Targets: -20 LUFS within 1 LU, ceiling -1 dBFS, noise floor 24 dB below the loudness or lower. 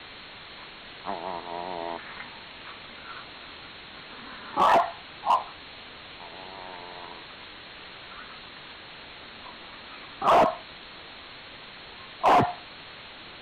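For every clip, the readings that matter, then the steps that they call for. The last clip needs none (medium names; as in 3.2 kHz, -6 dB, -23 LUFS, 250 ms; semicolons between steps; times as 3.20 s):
clipped samples 0.8%; clipping level -15.0 dBFS; noise floor -45 dBFS; noise floor target -51 dBFS; loudness -26.5 LUFS; peak level -15.0 dBFS; loudness target -20.0 LUFS
-> clip repair -15 dBFS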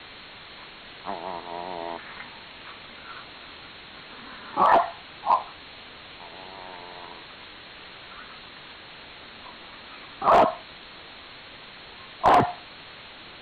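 clipped samples 0.0%; noise floor -45 dBFS; noise floor target -48 dBFS
-> noise reduction 6 dB, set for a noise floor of -45 dBFS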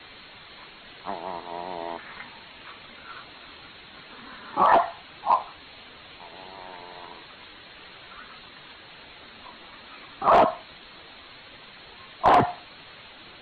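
noise floor -48 dBFS; loudness -24.0 LUFS; peak level -6.0 dBFS; loudness target -20.0 LUFS
-> trim +4 dB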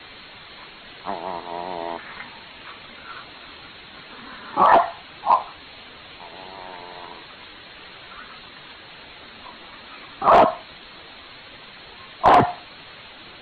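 loudness -20.0 LUFS; peak level -2.0 dBFS; noise floor -44 dBFS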